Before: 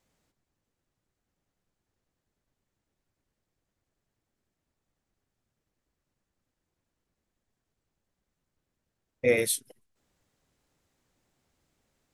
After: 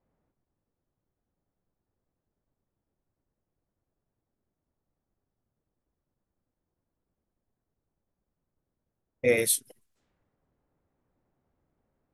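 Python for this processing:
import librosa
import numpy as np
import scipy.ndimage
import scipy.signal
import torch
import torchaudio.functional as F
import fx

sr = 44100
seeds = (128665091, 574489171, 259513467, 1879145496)

y = fx.env_lowpass(x, sr, base_hz=990.0, full_db=-45.0)
y = fx.high_shelf(y, sr, hz=9300.0, db=7.5)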